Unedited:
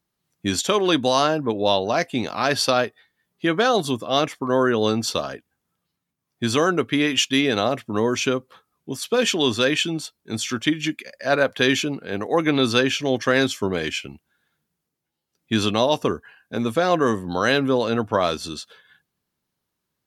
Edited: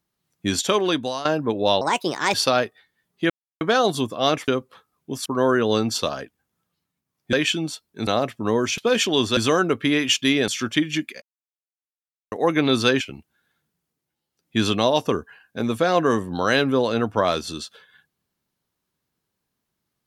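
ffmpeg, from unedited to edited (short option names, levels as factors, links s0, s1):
-filter_complex "[0:a]asplit=15[s0][s1][s2][s3][s4][s5][s6][s7][s8][s9][s10][s11][s12][s13][s14];[s0]atrim=end=1.25,asetpts=PTS-STARTPTS,afade=t=out:st=0.75:d=0.5:silence=0.16788[s15];[s1]atrim=start=1.25:end=1.814,asetpts=PTS-STARTPTS,afade=t=in:d=0.004:c=hsin:silence=0.16788[s16];[s2]atrim=start=1.81:end=2.55,asetpts=PTS-STARTPTS,asetrate=61740,aresample=44100[s17];[s3]atrim=start=2.546:end=3.51,asetpts=PTS-STARTPTS,afade=t=out:st=0.96:d=0.004:c=hsin,apad=pad_dur=0.31[s18];[s4]atrim=start=3.51:end=4.382,asetpts=PTS-STARTPTS,afade=t=in:d=0.004:c=hsin[s19];[s5]atrim=start=8.268:end=9.052[s20];[s6]atrim=start=4.378:end=6.452[s21];[s7]atrim=start=9.638:end=10.382[s22];[s8]atrim=start=7.558:end=8.272[s23];[s9]atrim=start=9.048:end=9.642[s24];[s10]atrim=start=6.448:end=7.562[s25];[s11]atrim=start=10.378:end=11.12,asetpts=PTS-STARTPTS,afade=t=out:st=0.738:d=0.004:c=hsin[s26];[s12]atrim=start=11.12:end=12.22,asetpts=PTS-STARTPTS,volume=0[s27];[s13]atrim=start=12.22:end=12.912,asetpts=PTS-STARTPTS,afade=t=in:d=0.004:c=hsin[s28];[s14]atrim=start=13.968[s29];[s15][s16]concat=n=2:v=0:a=1[s30];[s30][s17]acrossfade=d=0.004:c1=hsin:c2=hsin[s31];[s18][s19]concat=n=2:v=0:a=1[s32];[s31][s32]acrossfade=d=0.004:c1=hsin:c2=hsin[s33];[s33][s20]acrossfade=d=0.004:c1=hsin:c2=hsin[s34];[s34][s21]acrossfade=d=0.004:c1=hsin:c2=hsin[s35];[s35][s22]acrossfade=d=0.004:c1=hsin:c2=hsin[s36];[s36][s23]acrossfade=d=0.004:c1=hsin:c2=hsin[s37];[s37][s24]acrossfade=d=0.004:c1=hsin:c2=hsin[s38];[s38][s25]acrossfade=d=0.004:c1=hsin:c2=hsin[s39];[s26][s27][s28]concat=n=3:v=0:a=1[s40];[s39][s40]acrossfade=d=0.004:c1=hsin:c2=hsin[s41];[s41][s29]acrossfade=d=0.004:c1=hsin:c2=hsin"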